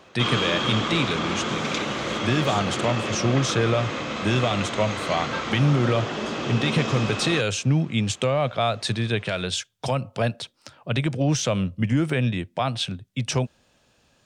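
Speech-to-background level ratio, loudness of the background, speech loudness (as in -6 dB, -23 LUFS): 2.5 dB, -27.5 LUFS, -25.0 LUFS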